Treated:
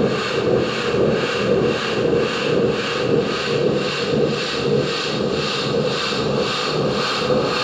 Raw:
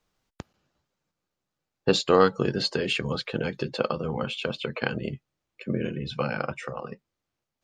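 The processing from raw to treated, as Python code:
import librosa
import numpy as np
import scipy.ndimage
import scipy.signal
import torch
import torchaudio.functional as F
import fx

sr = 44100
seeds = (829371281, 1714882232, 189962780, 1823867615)

p1 = fx.bin_compress(x, sr, power=0.2)
p2 = 10.0 ** (-10.0 / 20.0) * (np.abs((p1 / 10.0 ** (-10.0 / 20.0) + 3.0) % 4.0 - 2.0) - 1.0)
p3 = p1 + F.gain(torch.from_numpy(p2), -11.0).numpy()
p4 = fx.vibrato(p3, sr, rate_hz=1.2, depth_cents=20.0)
p5 = fx.paulstretch(p4, sr, seeds[0], factor=17.0, window_s=0.5, from_s=5.76)
y = fx.harmonic_tremolo(p5, sr, hz=1.9, depth_pct=70, crossover_hz=880.0)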